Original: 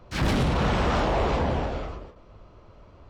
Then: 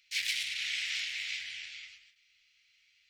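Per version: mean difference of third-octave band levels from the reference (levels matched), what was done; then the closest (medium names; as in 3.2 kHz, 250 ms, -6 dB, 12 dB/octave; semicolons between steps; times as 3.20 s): 21.0 dB: elliptic high-pass 2.1 kHz, stop band 50 dB; trim +3 dB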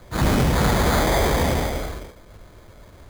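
5.0 dB: sample-and-hold 16×; trim +4.5 dB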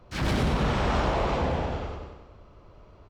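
1.5 dB: feedback delay 95 ms, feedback 54%, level -6 dB; trim -3 dB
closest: third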